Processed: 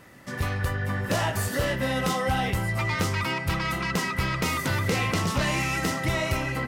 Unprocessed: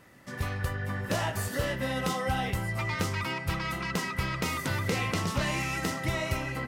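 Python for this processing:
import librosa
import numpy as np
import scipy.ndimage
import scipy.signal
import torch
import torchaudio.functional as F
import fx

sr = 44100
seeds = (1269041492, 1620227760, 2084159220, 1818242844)

y = 10.0 ** (-22.0 / 20.0) * np.tanh(x / 10.0 ** (-22.0 / 20.0))
y = F.gain(torch.from_numpy(y), 5.5).numpy()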